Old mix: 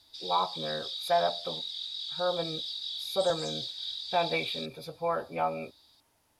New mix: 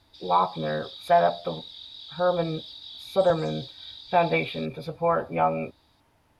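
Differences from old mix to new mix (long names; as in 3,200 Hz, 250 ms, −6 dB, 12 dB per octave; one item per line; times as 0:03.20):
speech +6.5 dB
master: add bass and treble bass +5 dB, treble −12 dB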